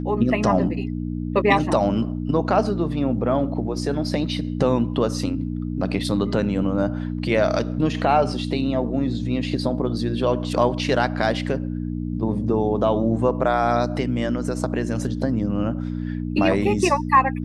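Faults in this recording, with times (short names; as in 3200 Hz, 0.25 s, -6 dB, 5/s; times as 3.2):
hum 60 Hz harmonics 5 -27 dBFS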